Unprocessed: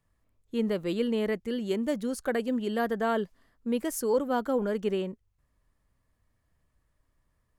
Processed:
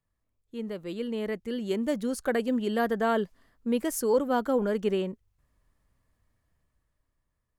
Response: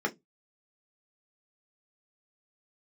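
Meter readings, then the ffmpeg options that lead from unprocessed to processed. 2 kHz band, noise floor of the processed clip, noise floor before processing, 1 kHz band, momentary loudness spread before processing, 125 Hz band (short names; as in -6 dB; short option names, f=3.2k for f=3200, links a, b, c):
+1.0 dB, -80 dBFS, -75 dBFS, +1.5 dB, 5 LU, n/a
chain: -af "dynaudnorm=f=260:g=11:m=10dB,volume=-8dB"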